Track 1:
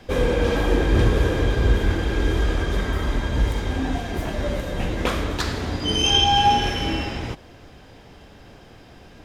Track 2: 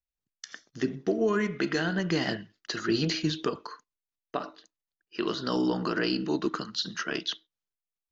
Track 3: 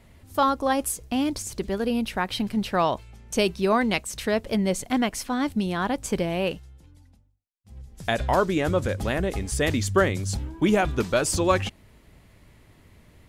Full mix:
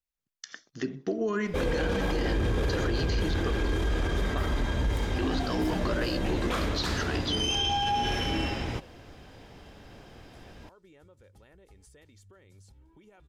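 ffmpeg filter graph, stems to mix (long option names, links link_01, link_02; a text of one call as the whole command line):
ffmpeg -i stem1.wav -i stem2.wav -i stem3.wav -filter_complex "[0:a]adelay=1450,volume=-3.5dB[link_01];[1:a]alimiter=limit=-18.5dB:level=0:latency=1:release=341,volume=-0.5dB[link_02];[2:a]aecho=1:1:2.2:0.35,acompressor=threshold=-30dB:ratio=8,alimiter=level_in=3.5dB:limit=-24dB:level=0:latency=1:release=199,volume=-3.5dB,adelay=2350,volume=-19.5dB[link_03];[link_01][link_02][link_03]amix=inputs=3:normalize=0,alimiter=limit=-20dB:level=0:latency=1:release=13" out.wav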